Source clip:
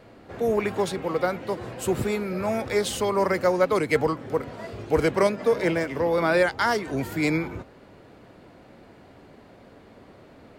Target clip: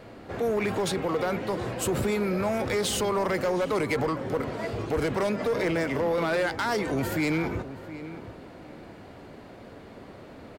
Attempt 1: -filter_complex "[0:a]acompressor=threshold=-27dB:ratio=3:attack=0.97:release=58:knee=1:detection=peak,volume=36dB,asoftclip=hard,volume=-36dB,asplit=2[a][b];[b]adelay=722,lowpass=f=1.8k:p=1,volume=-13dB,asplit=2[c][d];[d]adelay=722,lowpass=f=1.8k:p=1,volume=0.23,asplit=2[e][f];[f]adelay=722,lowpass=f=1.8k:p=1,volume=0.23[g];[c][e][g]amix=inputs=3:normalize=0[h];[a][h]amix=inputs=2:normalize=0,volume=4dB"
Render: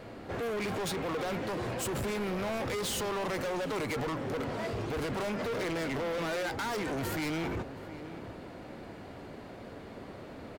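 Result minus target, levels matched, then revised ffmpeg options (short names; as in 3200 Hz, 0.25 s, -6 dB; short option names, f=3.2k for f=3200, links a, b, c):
overloaded stage: distortion +12 dB
-filter_complex "[0:a]acompressor=threshold=-27dB:ratio=3:attack=0.97:release=58:knee=1:detection=peak,volume=25.5dB,asoftclip=hard,volume=-25.5dB,asplit=2[a][b];[b]adelay=722,lowpass=f=1.8k:p=1,volume=-13dB,asplit=2[c][d];[d]adelay=722,lowpass=f=1.8k:p=1,volume=0.23,asplit=2[e][f];[f]adelay=722,lowpass=f=1.8k:p=1,volume=0.23[g];[c][e][g]amix=inputs=3:normalize=0[h];[a][h]amix=inputs=2:normalize=0,volume=4dB"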